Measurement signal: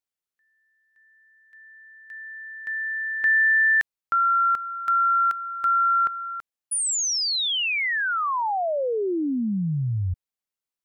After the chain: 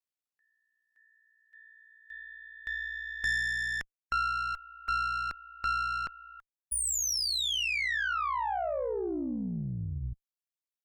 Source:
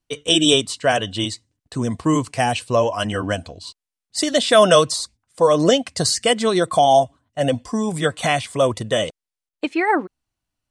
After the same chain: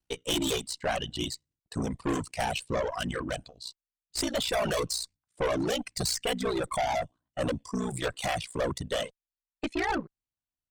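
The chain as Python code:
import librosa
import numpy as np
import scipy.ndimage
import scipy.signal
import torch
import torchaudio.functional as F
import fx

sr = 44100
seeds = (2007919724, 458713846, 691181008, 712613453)

y = x * np.sin(2.0 * np.pi * 30.0 * np.arange(len(x)) / sr)
y = fx.tube_stage(y, sr, drive_db=24.0, bias=0.5)
y = fx.dereverb_blind(y, sr, rt60_s=1.8)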